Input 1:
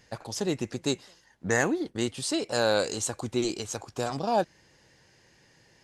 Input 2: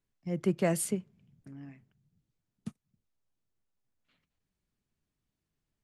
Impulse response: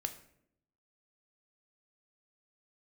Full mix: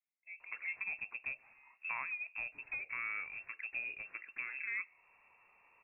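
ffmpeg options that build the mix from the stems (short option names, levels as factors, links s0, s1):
-filter_complex "[0:a]acompressor=threshold=0.0158:ratio=2.5,adelay=400,volume=0.473,asplit=2[s0][s1];[s1]volume=0.224[s2];[1:a]alimiter=level_in=1.5:limit=0.0631:level=0:latency=1,volume=0.668,bandpass=f=670:t=q:w=4:csg=0,volume=0.944[s3];[2:a]atrim=start_sample=2205[s4];[s2][s4]afir=irnorm=-1:irlink=0[s5];[s0][s3][s5]amix=inputs=3:normalize=0,lowpass=f=2400:t=q:w=0.5098,lowpass=f=2400:t=q:w=0.6013,lowpass=f=2400:t=q:w=0.9,lowpass=f=2400:t=q:w=2.563,afreqshift=-2800"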